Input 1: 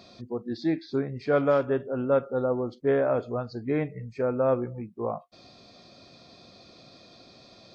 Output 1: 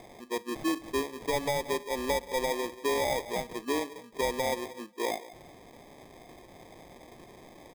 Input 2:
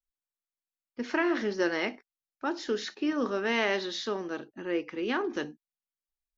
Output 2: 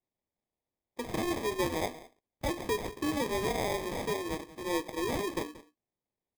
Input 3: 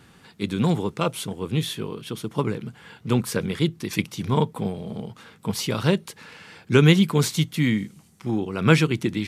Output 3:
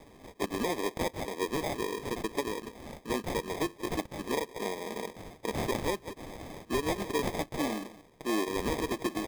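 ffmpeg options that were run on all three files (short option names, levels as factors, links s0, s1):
-filter_complex "[0:a]highpass=f=300:w=0.5412,highpass=f=300:w=1.3066,asplit=2[s0][s1];[s1]acompressor=threshold=0.02:ratio=6,volume=0.944[s2];[s0][s2]amix=inputs=2:normalize=0,asplit=2[s3][s4];[s4]adelay=180,highpass=300,lowpass=3400,asoftclip=type=hard:threshold=0.224,volume=0.141[s5];[s3][s5]amix=inputs=2:normalize=0,acrusher=samples=31:mix=1:aa=0.000001,alimiter=limit=0.126:level=0:latency=1:release=350,volume=0.668"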